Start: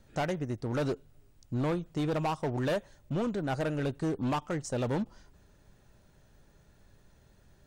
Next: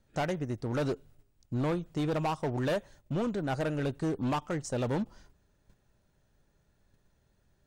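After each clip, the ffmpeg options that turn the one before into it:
ffmpeg -i in.wav -af "agate=range=-9dB:threshold=-55dB:ratio=16:detection=peak" out.wav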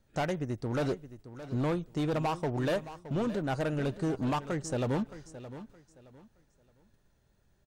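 ffmpeg -i in.wav -af "aecho=1:1:619|1238|1857:0.2|0.0539|0.0145" out.wav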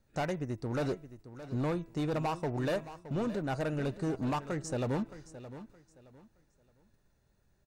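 ffmpeg -i in.wav -af "bandreject=frequency=3200:width=11,bandreject=frequency=330:width_type=h:width=4,bandreject=frequency=660:width_type=h:width=4,bandreject=frequency=990:width_type=h:width=4,bandreject=frequency=1320:width_type=h:width=4,bandreject=frequency=1650:width_type=h:width=4,bandreject=frequency=1980:width_type=h:width=4,bandreject=frequency=2310:width_type=h:width=4,bandreject=frequency=2640:width_type=h:width=4,volume=-2dB" out.wav

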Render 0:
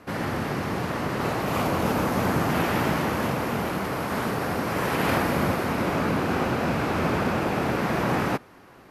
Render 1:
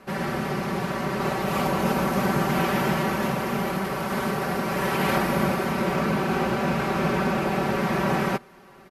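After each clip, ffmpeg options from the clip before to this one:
ffmpeg -i in.wav -af "aecho=1:1:5.2:0.79,volume=-1.5dB" out.wav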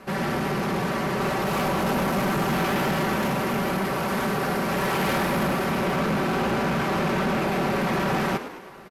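ffmpeg -i in.wav -filter_complex "[0:a]asoftclip=type=tanh:threshold=-24.5dB,asplit=7[link_01][link_02][link_03][link_04][link_05][link_06][link_07];[link_02]adelay=107,afreqshift=60,volume=-12dB[link_08];[link_03]adelay=214,afreqshift=120,volume=-17.4dB[link_09];[link_04]adelay=321,afreqshift=180,volume=-22.7dB[link_10];[link_05]adelay=428,afreqshift=240,volume=-28.1dB[link_11];[link_06]adelay=535,afreqshift=300,volume=-33.4dB[link_12];[link_07]adelay=642,afreqshift=360,volume=-38.8dB[link_13];[link_01][link_08][link_09][link_10][link_11][link_12][link_13]amix=inputs=7:normalize=0,volume=4dB" out.wav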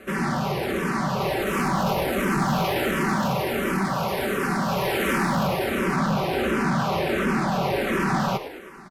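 ffmpeg -i in.wav -filter_complex "[0:a]asplit=2[link_01][link_02];[link_02]afreqshift=-1.4[link_03];[link_01][link_03]amix=inputs=2:normalize=1,volume=3.5dB" out.wav

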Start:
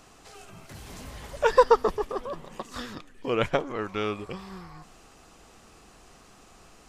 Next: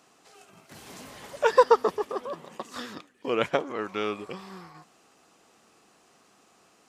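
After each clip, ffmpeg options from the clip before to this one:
ffmpeg -i in.wav -af "agate=range=-6dB:threshold=-45dB:ratio=16:detection=peak,highpass=190" out.wav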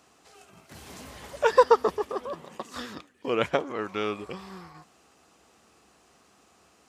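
ffmpeg -i in.wav -af "equalizer=frequency=67:width=2:gain=15" out.wav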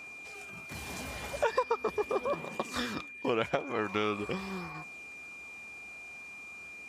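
ffmpeg -i in.wav -af "aphaser=in_gain=1:out_gain=1:delay=1.5:decay=0.2:speed=0.42:type=triangular,acompressor=threshold=-29dB:ratio=8,aeval=exprs='val(0)+0.00447*sin(2*PI*2400*n/s)':channel_layout=same,volume=3dB" out.wav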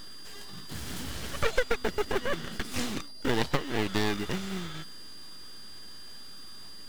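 ffmpeg -i in.wav -filter_complex "[0:a]acrossover=split=420[link_01][link_02];[link_01]acrusher=bits=3:mode=log:mix=0:aa=0.000001[link_03];[link_02]aeval=exprs='abs(val(0))':channel_layout=same[link_04];[link_03][link_04]amix=inputs=2:normalize=0,volume=5dB" out.wav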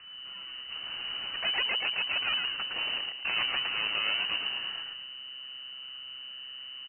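ffmpeg -i in.wav -filter_complex "[0:a]aeval=exprs='0.112*(abs(mod(val(0)/0.112+3,4)-2)-1)':channel_layout=same,asplit=6[link_01][link_02][link_03][link_04][link_05][link_06];[link_02]adelay=111,afreqshift=-130,volume=-3dB[link_07];[link_03]adelay=222,afreqshift=-260,volume=-12.1dB[link_08];[link_04]adelay=333,afreqshift=-390,volume=-21.2dB[link_09];[link_05]adelay=444,afreqshift=-520,volume=-30.4dB[link_10];[link_06]adelay=555,afreqshift=-650,volume=-39.5dB[link_11];[link_01][link_07][link_08][link_09][link_10][link_11]amix=inputs=6:normalize=0,lowpass=frequency=2600:width_type=q:width=0.5098,lowpass=frequency=2600:width_type=q:width=0.6013,lowpass=frequency=2600:width_type=q:width=0.9,lowpass=frequency=2600:width_type=q:width=2.563,afreqshift=-3000,volume=-2.5dB" out.wav

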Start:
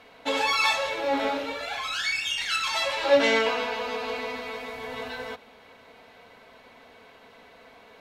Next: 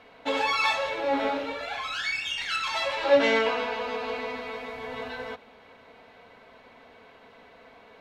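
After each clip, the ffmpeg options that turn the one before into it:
ffmpeg -i in.wav -af "highshelf=frequency=5500:gain=-11.5" out.wav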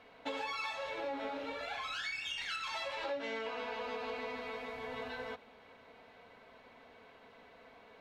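ffmpeg -i in.wav -af "acompressor=threshold=-30dB:ratio=8,volume=-6dB" out.wav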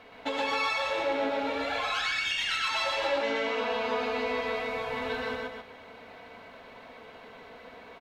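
ffmpeg -i in.wav -af "aecho=1:1:122.4|259.5:0.891|0.501,volume=7dB" out.wav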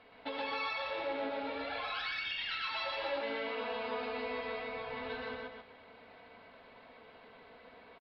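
ffmpeg -i in.wav -af "aresample=11025,aresample=44100,volume=-8dB" out.wav

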